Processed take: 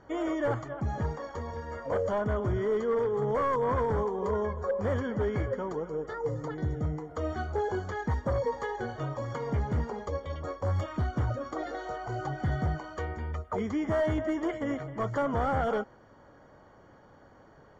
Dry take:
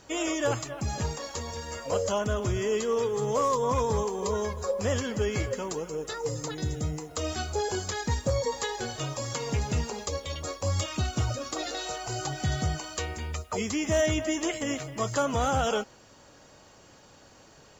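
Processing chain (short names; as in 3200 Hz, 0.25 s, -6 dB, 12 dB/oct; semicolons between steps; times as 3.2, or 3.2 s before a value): wavefolder -22 dBFS; polynomial smoothing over 41 samples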